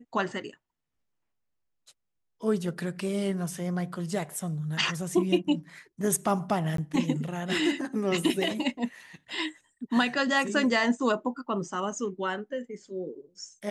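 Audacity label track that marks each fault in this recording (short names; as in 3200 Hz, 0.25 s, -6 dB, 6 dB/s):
6.770000	6.780000	gap 13 ms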